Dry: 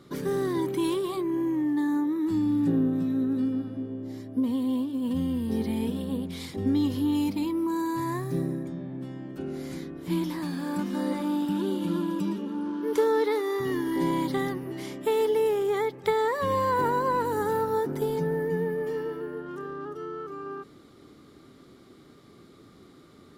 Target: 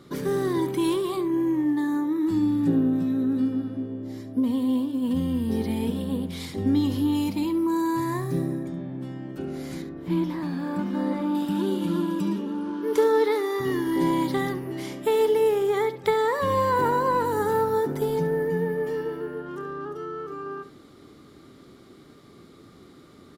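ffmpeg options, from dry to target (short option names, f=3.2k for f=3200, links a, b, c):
-filter_complex "[0:a]asettb=1/sr,asplit=3[a][b][c];[a]atrim=end=9.824[d];[b]atrim=start=9.82:end=11.35,asetpts=PTS-STARTPTS,afade=t=in:d=0.004:c=qsin,afade=t=out:st=1.526:d=0.004:c=qsin,equalizer=f=9.7k:t=o:w=2.3:g=-13[e];[c]atrim=start=11.346[f];[d][e]acrossfade=d=0.004:c1=hsin:c2=qsin[g];[g][f]acrossfade=d=0.004:c1=qsin:c2=hsin,aecho=1:1:70:0.224,volume=2.5dB"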